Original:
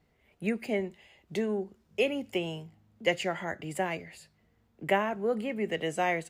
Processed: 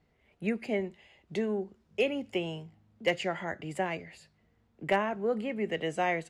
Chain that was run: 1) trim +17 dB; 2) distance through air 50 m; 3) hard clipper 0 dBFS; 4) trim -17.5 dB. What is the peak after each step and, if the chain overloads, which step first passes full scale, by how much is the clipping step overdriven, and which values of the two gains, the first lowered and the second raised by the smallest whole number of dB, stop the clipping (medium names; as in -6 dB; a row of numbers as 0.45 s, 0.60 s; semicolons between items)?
+3.5 dBFS, +3.5 dBFS, 0.0 dBFS, -17.5 dBFS; step 1, 3.5 dB; step 1 +13 dB, step 4 -13.5 dB